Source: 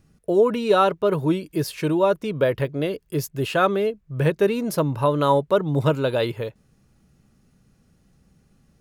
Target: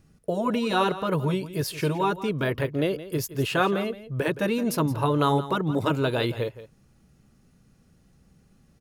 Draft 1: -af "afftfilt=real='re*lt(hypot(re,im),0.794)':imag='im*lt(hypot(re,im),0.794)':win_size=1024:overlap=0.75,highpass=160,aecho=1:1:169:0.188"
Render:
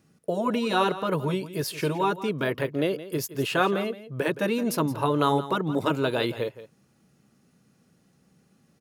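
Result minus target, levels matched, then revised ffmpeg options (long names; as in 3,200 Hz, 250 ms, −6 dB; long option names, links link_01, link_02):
125 Hz band −3.5 dB
-af "afftfilt=real='re*lt(hypot(re,im),0.794)':imag='im*lt(hypot(re,im),0.794)':win_size=1024:overlap=0.75,aecho=1:1:169:0.188"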